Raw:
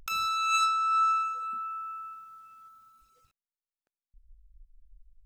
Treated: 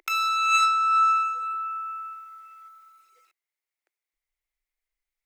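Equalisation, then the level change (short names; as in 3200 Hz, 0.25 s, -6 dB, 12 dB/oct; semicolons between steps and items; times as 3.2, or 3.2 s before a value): elliptic high-pass 340 Hz, stop band 40 dB; bell 2100 Hz +14 dB 0.37 oct; +4.0 dB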